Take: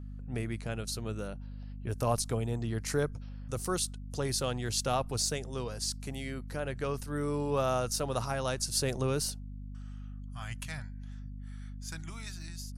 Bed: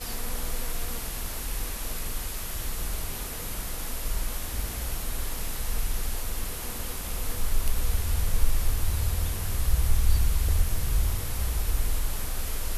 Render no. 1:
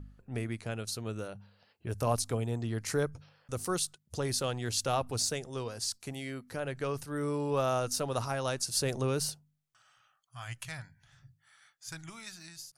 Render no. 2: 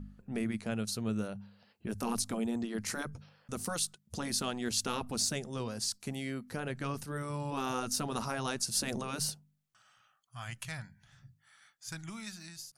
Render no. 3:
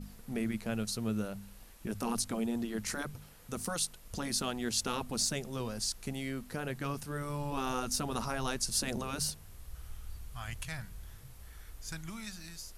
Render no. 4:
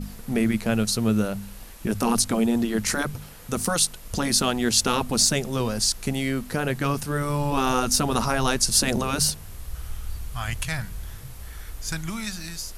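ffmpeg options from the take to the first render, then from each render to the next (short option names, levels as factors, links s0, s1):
-af "bandreject=f=50:t=h:w=4,bandreject=f=100:t=h:w=4,bandreject=f=150:t=h:w=4,bandreject=f=200:t=h:w=4,bandreject=f=250:t=h:w=4"
-af "afftfilt=real='re*lt(hypot(re,im),0.141)':imag='im*lt(hypot(re,im),0.141)':win_size=1024:overlap=0.75,equalizer=f=210:t=o:w=0.39:g=11"
-filter_complex "[1:a]volume=0.0708[s0];[0:a][s0]amix=inputs=2:normalize=0"
-af "volume=3.98"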